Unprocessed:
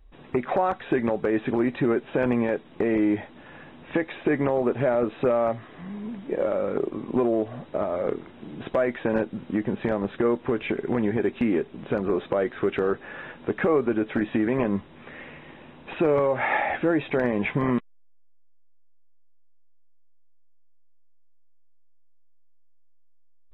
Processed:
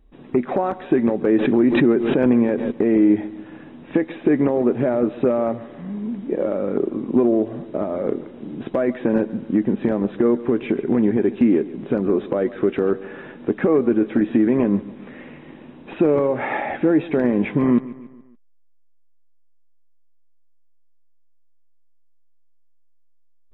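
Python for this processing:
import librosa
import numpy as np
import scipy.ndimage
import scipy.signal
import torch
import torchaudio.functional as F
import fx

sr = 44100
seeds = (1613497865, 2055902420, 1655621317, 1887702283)

y = fx.peak_eq(x, sr, hz=260.0, db=11.0, octaves=1.8)
y = fx.echo_feedback(y, sr, ms=142, feedback_pct=49, wet_db=-17.5)
y = fx.pre_swell(y, sr, db_per_s=39.0, at=(1.24, 2.7), fade=0.02)
y = y * 10.0 ** (-2.5 / 20.0)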